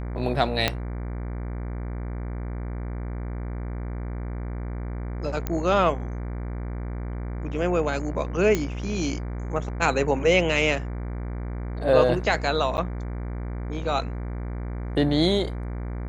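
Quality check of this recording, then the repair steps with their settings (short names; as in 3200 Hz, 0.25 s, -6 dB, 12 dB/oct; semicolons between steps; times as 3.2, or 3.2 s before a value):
buzz 60 Hz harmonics 39 -31 dBFS
0.68 pop -6 dBFS
5.47 pop -13 dBFS
8.55 pop -10 dBFS
12.77–12.78 gap 9.4 ms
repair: de-click; de-hum 60 Hz, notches 39; interpolate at 12.77, 9.4 ms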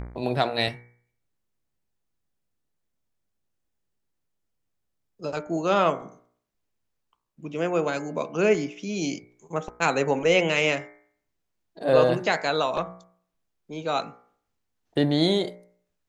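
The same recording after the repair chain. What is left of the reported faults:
0.68 pop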